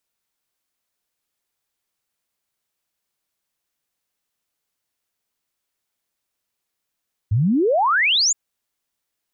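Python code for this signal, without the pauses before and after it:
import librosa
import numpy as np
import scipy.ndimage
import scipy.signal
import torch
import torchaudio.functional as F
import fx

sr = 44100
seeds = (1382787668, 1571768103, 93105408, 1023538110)

y = fx.ess(sr, length_s=1.02, from_hz=95.0, to_hz=7400.0, level_db=-14.5)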